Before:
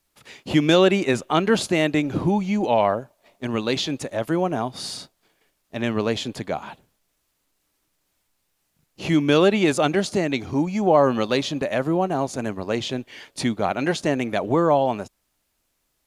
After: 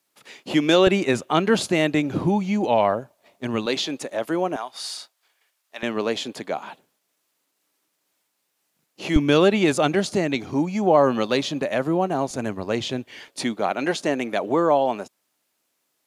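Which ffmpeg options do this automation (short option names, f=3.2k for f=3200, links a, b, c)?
-af "asetnsamples=n=441:p=0,asendcmd='0.87 highpass f 89;3.66 highpass f 260;4.56 highpass f 890;5.83 highpass f 250;9.16 highpass f 60;10.35 highpass f 130;12.3 highpass f 54;13.28 highpass f 230',highpass=220"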